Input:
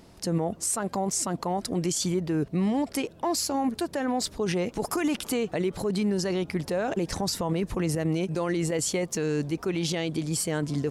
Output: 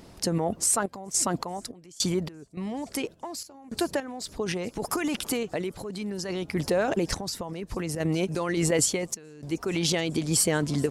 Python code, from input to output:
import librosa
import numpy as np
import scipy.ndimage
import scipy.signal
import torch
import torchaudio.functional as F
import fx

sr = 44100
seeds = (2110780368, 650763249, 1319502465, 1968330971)

y = fx.echo_wet_highpass(x, sr, ms=429, feedback_pct=63, hz=5000.0, wet_db=-20.0)
y = fx.hpss(y, sr, part='percussive', gain_db=5)
y = fx.tremolo_random(y, sr, seeds[0], hz=3.5, depth_pct=95)
y = y * 10.0 ** (2.0 / 20.0)